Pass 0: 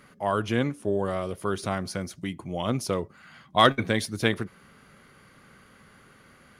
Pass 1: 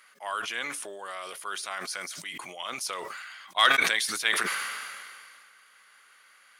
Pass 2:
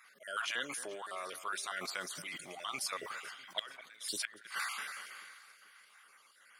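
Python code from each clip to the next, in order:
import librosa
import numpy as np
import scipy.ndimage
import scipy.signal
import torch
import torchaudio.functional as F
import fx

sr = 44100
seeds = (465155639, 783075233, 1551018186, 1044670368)

y1 = scipy.signal.sosfilt(scipy.signal.butter(2, 1400.0, 'highpass', fs=sr, output='sos'), x)
y1 = fx.peak_eq(y1, sr, hz=8400.0, db=3.0, octaves=0.31)
y1 = fx.sustainer(y1, sr, db_per_s=27.0)
y1 = y1 * 10.0 ** (1.5 / 20.0)
y2 = fx.spec_dropout(y1, sr, seeds[0], share_pct=34)
y2 = fx.gate_flip(y2, sr, shuts_db=-17.0, range_db=-27)
y2 = fx.echo_alternate(y2, sr, ms=217, hz=2200.0, feedback_pct=65, wet_db=-13.5)
y2 = y2 * 10.0 ** (-3.0 / 20.0)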